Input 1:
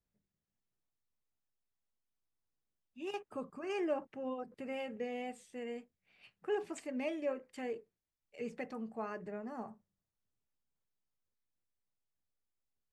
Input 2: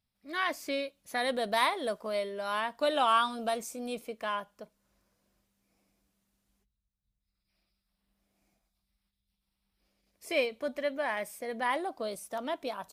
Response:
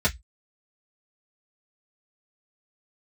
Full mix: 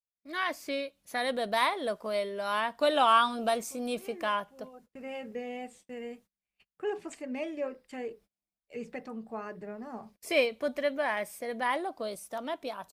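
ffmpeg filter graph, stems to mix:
-filter_complex "[0:a]adelay=350,volume=-2dB[link_01];[1:a]adynamicequalizer=threshold=0.00631:dfrequency=4100:dqfactor=0.7:tfrequency=4100:tqfactor=0.7:attack=5:release=100:ratio=0.375:range=2.5:mode=cutabove:tftype=highshelf,volume=-0.5dB,asplit=2[link_02][link_03];[link_03]apad=whole_len=585238[link_04];[link_01][link_04]sidechaincompress=threshold=-49dB:ratio=8:attack=16:release=550[link_05];[link_05][link_02]amix=inputs=2:normalize=0,agate=range=-28dB:threshold=-59dB:ratio=16:detection=peak,dynaudnorm=framelen=430:gausssize=11:maxgain=4dB"

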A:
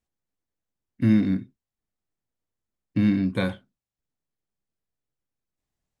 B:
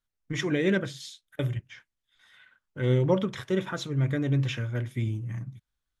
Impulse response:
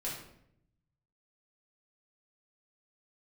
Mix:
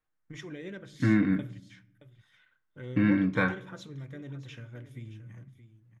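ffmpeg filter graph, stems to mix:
-filter_complex "[0:a]lowpass=2400,equalizer=frequency=1500:width=1:gain=10.5,aecho=1:1:6.5:0.58,volume=-4.5dB,asplit=2[link_01][link_02];[link_02]volume=-17.5dB[link_03];[1:a]acompressor=threshold=-35dB:ratio=2,volume=-9.5dB,asplit=3[link_04][link_05][link_06];[link_05]volume=-17dB[link_07];[link_06]volume=-13dB[link_08];[2:a]atrim=start_sample=2205[link_09];[link_03][link_07]amix=inputs=2:normalize=0[link_10];[link_10][link_09]afir=irnorm=-1:irlink=0[link_11];[link_08]aecho=0:1:622:1[link_12];[link_01][link_04][link_11][link_12]amix=inputs=4:normalize=0"

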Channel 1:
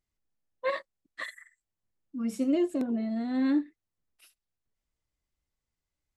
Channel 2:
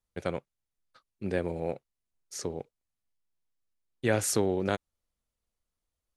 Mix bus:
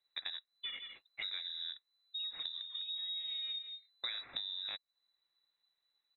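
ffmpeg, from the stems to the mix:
ffmpeg -i stem1.wav -i stem2.wav -filter_complex "[0:a]acompressor=threshold=-32dB:ratio=3,volume=-1dB,asplit=2[link_01][link_02];[link_02]volume=-12dB[link_03];[1:a]firequalizer=gain_entry='entry(350,0);entry(890,-18);entry(2000,3);entry(6600,-2)':delay=0.05:min_phase=1,volume=2.5dB,asplit=2[link_04][link_05];[link_05]apad=whole_len=271971[link_06];[link_01][link_06]sidechaincompress=threshold=-39dB:ratio=3:attack=16:release=447[link_07];[link_03]aecho=0:1:167:1[link_08];[link_07][link_04][link_08]amix=inputs=3:normalize=0,equalizer=frequency=790:width=3:gain=-8,lowpass=frequency=3400:width_type=q:width=0.5098,lowpass=frequency=3400:width_type=q:width=0.6013,lowpass=frequency=3400:width_type=q:width=0.9,lowpass=frequency=3400:width_type=q:width=2.563,afreqshift=-4000,acompressor=threshold=-39dB:ratio=6" out.wav

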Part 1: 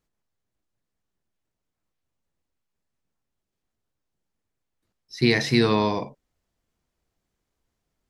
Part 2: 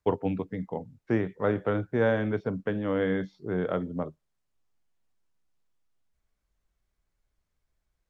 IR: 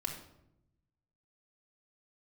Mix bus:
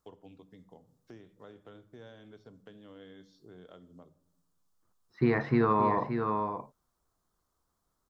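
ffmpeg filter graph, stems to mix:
-filter_complex "[0:a]lowpass=frequency=1200:width_type=q:width=3.6,volume=-3.5dB,asplit=2[link_01][link_02];[link_02]volume=-9.5dB[link_03];[1:a]acompressor=threshold=-41dB:ratio=2.5,aexciter=amount=7.5:drive=3.6:freq=3100,volume=-15dB,asplit=2[link_04][link_05];[link_05]volume=-10dB[link_06];[2:a]atrim=start_sample=2205[link_07];[link_06][link_07]afir=irnorm=-1:irlink=0[link_08];[link_03]aecho=0:1:573:1[link_09];[link_01][link_04][link_08][link_09]amix=inputs=4:normalize=0,alimiter=limit=-15dB:level=0:latency=1:release=315"

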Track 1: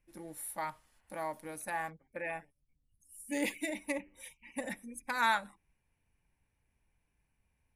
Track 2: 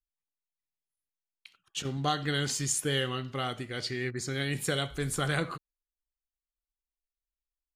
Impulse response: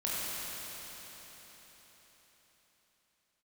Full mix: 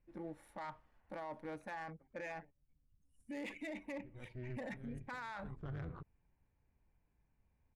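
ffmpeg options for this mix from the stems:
-filter_complex "[0:a]alimiter=level_in=4.5dB:limit=-24dB:level=0:latency=1:release=58,volume=-4.5dB,volume=1.5dB,asplit=2[link_01][link_02];[1:a]tremolo=f=250:d=0.857,aemphasis=mode=reproduction:type=riaa,adelay=450,volume=-11.5dB,asplit=3[link_03][link_04][link_05];[link_03]atrim=end=2.26,asetpts=PTS-STARTPTS,afade=type=out:start_time=2.256:duration=0.004:curve=hsin[link_06];[link_04]atrim=start=2.26:end=4,asetpts=PTS-STARTPTS,volume=0[link_07];[link_05]atrim=start=4,asetpts=PTS-STARTPTS,afade=type=in:duration=0.004:curve=hsin[link_08];[link_06][link_07][link_08]concat=n=3:v=0:a=1[link_09];[link_02]apad=whole_len=361856[link_10];[link_09][link_10]sidechaincompress=threshold=-52dB:ratio=8:attack=26:release=287[link_11];[link_01][link_11]amix=inputs=2:normalize=0,adynamicsmooth=sensitivity=7:basefreq=1700,alimiter=level_in=13dB:limit=-24dB:level=0:latency=1:release=21,volume=-13dB"

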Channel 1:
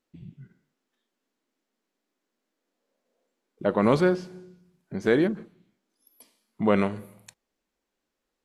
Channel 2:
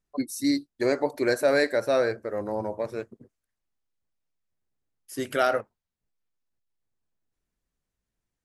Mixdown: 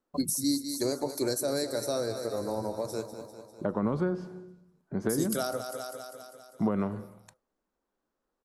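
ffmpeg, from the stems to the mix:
ffmpeg -i stem1.wav -i stem2.wav -filter_complex "[0:a]acompressor=threshold=-21dB:ratio=6,volume=0dB[link_01];[1:a]agate=range=-33dB:threshold=-49dB:ratio=3:detection=peak,equalizer=frequency=2900:width_type=o:width=0.66:gain=-14.5,aexciter=amount=8.3:drive=8.4:freq=2700,volume=-0.5dB,asplit=2[link_02][link_03];[link_03]volume=-12.5dB,aecho=0:1:199|398|597|796|995|1194|1393|1592|1791:1|0.59|0.348|0.205|0.121|0.0715|0.0422|0.0249|0.0147[link_04];[link_01][link_02][link_04]amix=inputs=3:normalize=0,highshelf=frequency=1700:width_type=q:width=1.5:gain=-8,acrossover=split=270[link_05][link_06];[link_06]acompressor=threshold=-30dB:ratio=5[link_07];[link_05][link_07]amix=inputs=2:normalize=0" out.wav

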